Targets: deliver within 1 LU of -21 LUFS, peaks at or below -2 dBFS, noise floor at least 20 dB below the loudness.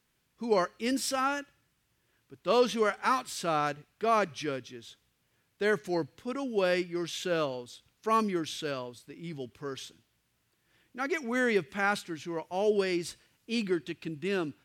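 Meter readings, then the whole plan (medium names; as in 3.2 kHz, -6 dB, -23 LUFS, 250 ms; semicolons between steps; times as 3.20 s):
loudness -31.0 LUFS; peak level -13.0 dBFS; loudness target -21.0 LUFS
-> trim +10 dB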